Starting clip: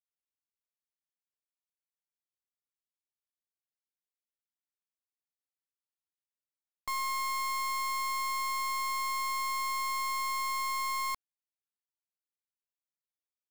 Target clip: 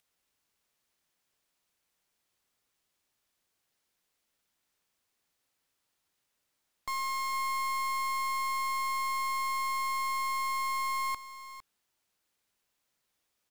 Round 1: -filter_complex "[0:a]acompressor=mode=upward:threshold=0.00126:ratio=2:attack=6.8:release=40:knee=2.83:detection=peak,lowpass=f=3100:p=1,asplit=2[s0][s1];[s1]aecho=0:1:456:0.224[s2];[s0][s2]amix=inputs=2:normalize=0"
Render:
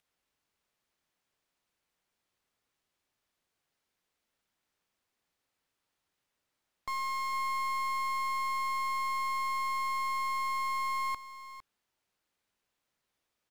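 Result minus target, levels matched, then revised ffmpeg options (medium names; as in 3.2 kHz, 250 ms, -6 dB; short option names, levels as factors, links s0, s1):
8 kHz band -5.0 dB
-filter_complex "[0:a]acompressor=mode=upward:threshold=0.00126:ratio=2:attack=6.8:release=40:knee=2.83:detection=peak,lowpass=f=8600:p=1,asplit=2[s0][s1];[s1]aecho=0:1:456:0.224[s2];[s0][s2]amix=inputs=2:normalize=0"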